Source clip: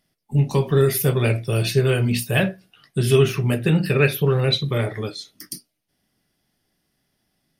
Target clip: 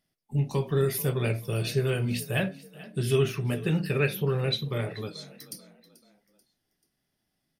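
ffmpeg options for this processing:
-filter_complex "[0:a]asplit=4[a][b][c][d];[b]adelay=436,afreqshift=31,volume=-19dB[e];[c]adelay=872,afreqshift=62,volume=-26.1dB[f];[d]adelay=1308,afreqshift=93,volume=-33.3dB[g];[a][e][f][g]amix=inputs=4:normalize=0,volume=-8dB"

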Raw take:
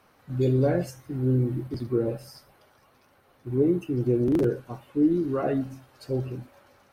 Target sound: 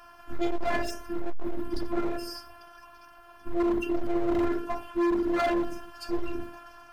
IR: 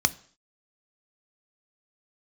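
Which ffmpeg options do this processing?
-filter_complex "[0:a]asplit=2[a][b];[1:a]atrim=start_sample=2205,asetrate=33075,aresample=44100,lowpass=2.8k[c];[b][c]afir=irnorm=-1:irlink=0,volume=-7dB[d];[a][d]amix=inputs=2:normalize=0,afftfilt=real='hypot(re,im)*cos(PI*b)':imag='0':win_size=512:overlap=0.75,asoftclip=type=hard:threshold=-29.5dB,volume=7dB"

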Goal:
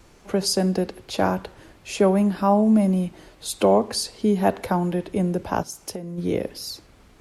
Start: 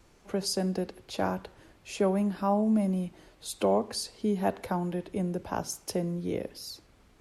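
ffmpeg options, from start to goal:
-filter_complex "[0:a]asplit=3[a][b][c];[a]afade=t=out:st=5.62:d=0.02[d];[b]acompressor=threshold=-38dB:ratio=8,afade=t=in:st=5.62:d=0.02,afade=t=out:st=6.17:d=0.02[e];[c]afade=t=in:st=6.17:d=0.02[f];[d][e][f]amix=inputs=3:normalize=0,volume=8dB"

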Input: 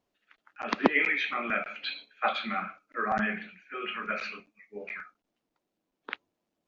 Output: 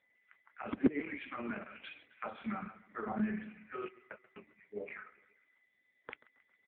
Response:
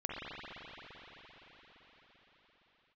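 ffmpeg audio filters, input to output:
-filter_complex "[0:a]highpass=150,asettb=1/sr,asplit=3[a][b][c];[a]atrim=end=3.884[d];[b]atrim=start=3.88:end=4.36,asetpts=PTS-STARTPTS,afade=t=in:d=0.004:c=qsin,afade=t=out:st=0.476:d=0.004:c=qsin,agate=range=-47dB:threshold=-28dB:ratio=16:detection=peak[e];[c]atrim=start=4.356[f];[d][e]acrossfade=d=0.004:c1=hsin:c2=qsin[g];[g][f]acrossfade=d=0.004:c1=qsin:c2=hsin,highshelf=f=2.6k:g=-10.5,acrossover=split=390[h][i];[i]acompressor=threshold=-39dB:ratio=8[j];[h][j]amix=inputs=2:normalize=0,aeval=exprs='val(0)+0.000447*sin(2*PI*2000*n/s)':c=same,aecho=1:1:135|270|405|540:0.1|0.056|0.0314|0.0176,volume=1dB" -ar 8000 -c:a libopencore_amrnb -b:a 5150

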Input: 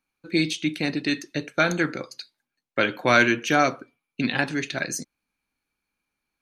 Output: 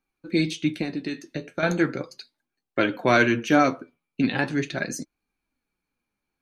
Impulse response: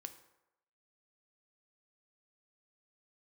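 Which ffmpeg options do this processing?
-filter_complex "[0:a]tiltshelf=f=970:g=4,asettb=1/sr,asplit=3[a][b][c];[a]atrim=end=0.824[d];[b]atrim=start=0.82:end=1.63,asetpts=PTS-STARTPTS,afade=t=in:d=0.004:c=qsin,afade=t=out:st=0.806:d=0.004:c=qsin,acompressor=threshold=-28dB:ratio=2.5[e];[c]atrim=start=1.626[f];[d][e]acrossfade=d=0.004:c1=hsin:c2=qsin[g];[g][f]acrossfade=d=0.004:c1=qsin:c2=hsin,flanger=delay=2.5:depth=9.6:regen=53:speed=0.38:shape=sinusoidal,volume=3.5dB"

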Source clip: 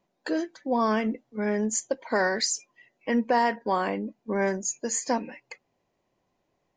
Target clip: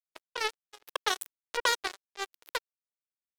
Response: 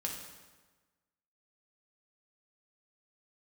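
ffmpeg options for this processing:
-af "asetrate=88200,aresample=44100,bandreject=f=2.6k:w=13,aeval=exprs='sgn(val(0))*max(abs(val(0))-0.0075,0)':c=same,acrusher=bits=2:mix=0:aa=0.5,lowshelf=f=270:t=q:w=1.5:g=-9.5"

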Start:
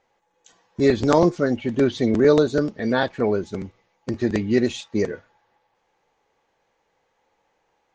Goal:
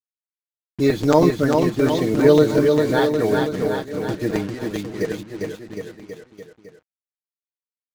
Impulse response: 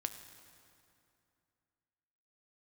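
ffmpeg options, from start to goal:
-filter_complex "[0:a]agate=range=-33dB:threshold=-47dB:ratio=3:detection=peak,aecho=1:1:6.5:0.6,asettb=1/sr,asplit=3[a][b][c];[a]atrim=end=4.464[d];[b]atrim=start=4.46:end=5.01,asetpts=PTS-STARTPTS,afade=t=in:d=0.004:c=qsin,afade=t=out:st=0.546:d=0.004:c=qsin,acompressor=threshold=-32dB:ratio=6[e];[c]atrim=start=5.006[f];[d][e]acrossfade=d=0.004:c1=hsin:c2=qsin[g];[g][f]acrossfade=d=0.004:c1=qsin:c2=hsin,acrusher=bits=5:mix=0:aa=0.5,aecho=1:1:400|760|1084|1376|1638:0.631|0.398|0.251|0.158|0.1,volume=-1dB"

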